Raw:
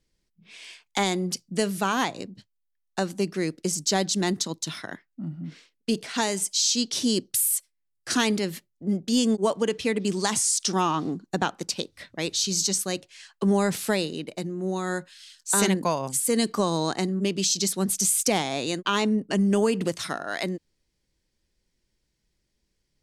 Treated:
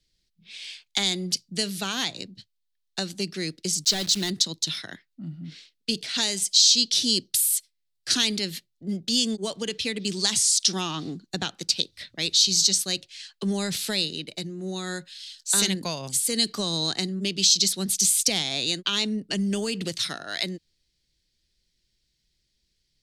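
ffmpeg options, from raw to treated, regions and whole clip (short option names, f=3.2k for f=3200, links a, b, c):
-filter_complex "[0:a]asettb=1/sr,asplit=3[a][b][c];[a]atrim=end=3.844[d];[b]atrim=start=3.84:end=4.3,asetpts=PTS-STARTPTS,afade=t=in:d=0.004:c=qsin,afade=t=out:st=0.456:d=0.004:c=qsin,highpass=f=50:p=1,asoftclip=type=hard:threshold=-19.5dB,acrusher=bits=7:dc=4:mix=0:aa=0.000001[e];[c]atrim=start=4.296[f];[d][e]acrossfade=d=0.004:c1=hsin:c2=qsin[g];[g][f]acrossfade=d=0.004:c1=qsin:c2=hsin,equalizer=f=250:t=o:w=1:g=-4,equalizer=f=500:t=o:w=1:g=-4,equalizer=f=1k:t=o:w=1:g=-9,equalizer=f=4k:t=o:w=1:g=10,acrossover=split=200|3000[h][i][j];[i]acompressor=threshold=-27dB:ratio=6[k];[h][k][j]amix=inputs=3:normalize=0"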